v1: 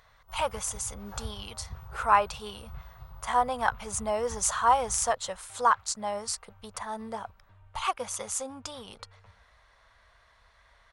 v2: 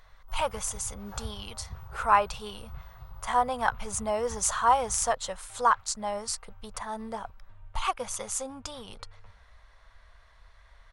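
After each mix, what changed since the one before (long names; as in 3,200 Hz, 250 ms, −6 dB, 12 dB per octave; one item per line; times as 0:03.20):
speech: remove high-pass filter 120 Hz 6 dB per octave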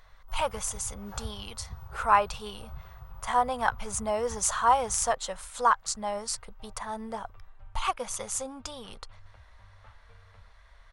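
second sound: entry +1.10 s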